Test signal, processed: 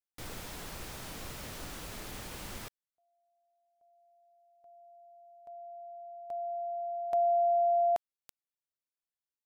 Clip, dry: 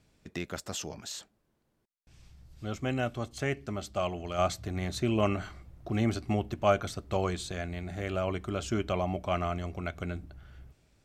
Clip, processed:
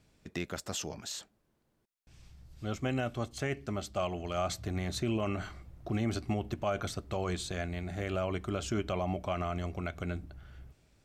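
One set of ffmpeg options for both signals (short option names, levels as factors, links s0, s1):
-af "alimiter=limit=0.0794:level=0:latency=1:release=55"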